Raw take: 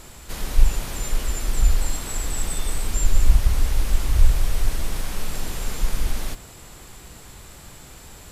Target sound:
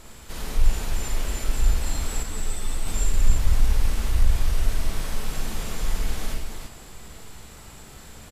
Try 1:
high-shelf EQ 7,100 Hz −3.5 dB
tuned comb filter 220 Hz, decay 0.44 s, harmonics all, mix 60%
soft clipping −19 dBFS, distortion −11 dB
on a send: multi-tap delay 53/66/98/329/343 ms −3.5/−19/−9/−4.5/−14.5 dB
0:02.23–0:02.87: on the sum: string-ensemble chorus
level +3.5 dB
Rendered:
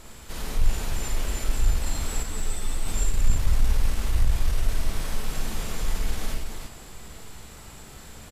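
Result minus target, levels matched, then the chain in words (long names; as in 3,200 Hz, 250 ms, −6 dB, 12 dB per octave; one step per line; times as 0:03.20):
soft clipping: distortion +7 dB
high-shelf EQ 7,100 Hz −3.5 dB
tuned comb filter 220 Hz, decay 0.44 s, harmonics all, mix 60%
soft clipping −13 dBFS, distortion −18 dB
on a send: multi-tap delay 53/66/98/329/343 ms −3.5/−19/−9/−4.5/−14.5 dB
0:02.23–0:02.87: on the sum: string-ensemble chorus
level +3.5 dB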